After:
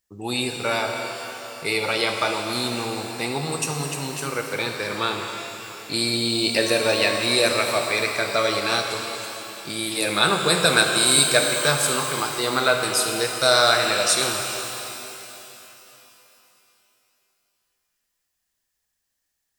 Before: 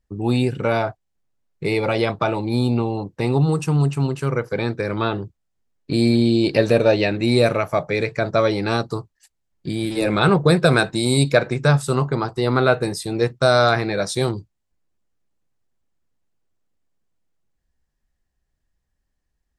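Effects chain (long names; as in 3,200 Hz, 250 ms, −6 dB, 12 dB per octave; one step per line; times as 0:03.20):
spectral tilt +4 dB per octave
reverb with rising layers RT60 3.3 s, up +12 semitones, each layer −8 dB, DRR 3 dB
level −2.5 dB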